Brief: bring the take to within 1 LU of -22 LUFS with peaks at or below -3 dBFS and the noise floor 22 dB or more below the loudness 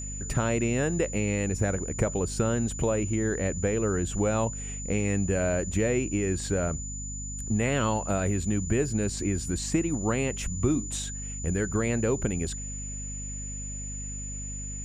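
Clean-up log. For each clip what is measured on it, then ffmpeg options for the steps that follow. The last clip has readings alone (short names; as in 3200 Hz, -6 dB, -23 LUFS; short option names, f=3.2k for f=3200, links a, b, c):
hum 50 Hz; harmonics up to 250 Hz; hum level -35 dBFS; steady tone 7000 Hz; tone level -37 dBFS; loudness -28.5 LUFS; peak -11.0 dBFS; loudness target -22.0 LUFS
-> -af "bandreject=f=50:t=h:w=4,bandreject=f=100:t=h:w=4,bandreject=f=150:t=h:w=4,bandreject=f=200:t=h:w=4,bandreject=f=250:t=h:w=4"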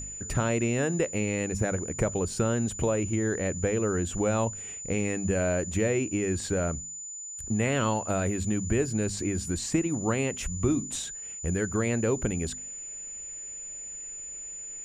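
hum none; steady tone 7000 Hz; tone level -37 dBFS
-> -af "bandreject=f=7k:w=30"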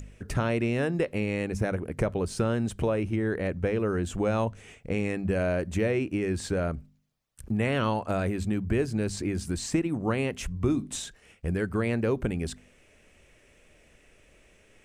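steady tone none; loudness -29.0 LUFS; peak -12.0 dBFS; loudness target -22.0 LUFS
-> -af "volume=7dB"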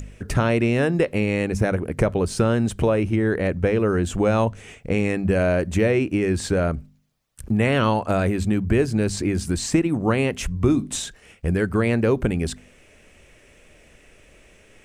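loudness -22.0 LUFS; peak -5.0 dBFS; noise floor -53 dBFS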